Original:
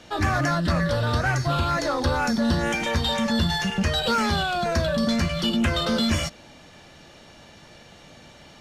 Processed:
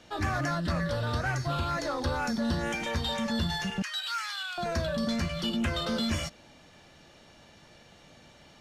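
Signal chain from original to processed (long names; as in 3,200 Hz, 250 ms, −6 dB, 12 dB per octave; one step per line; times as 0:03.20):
0:03.82–0:04.58: inverse Chebyshev high-pass filter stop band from 210 Hz, stop band 80 dB
level −7 dB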